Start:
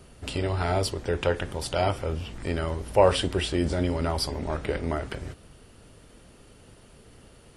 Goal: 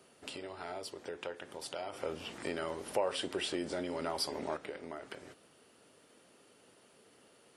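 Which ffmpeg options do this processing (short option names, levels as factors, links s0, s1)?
-filter_complex "[0:a]acompressor=threshold=0.0282:ratio=4,highpass=290,asplit=3[s0][s1][s2];[s0]afade=t=out:st=1.92:d=0.02[s3];[s1]acontrast=82,afade=t=in:st=1.92:d=0.02,afade=t=out:st=4.56:d=0.02[s4];[s2]afade=t=in:st=4.56:d=0.02[s5];[s3][s4][s5]amix=inputs=3:normalize=0,volume=0.447"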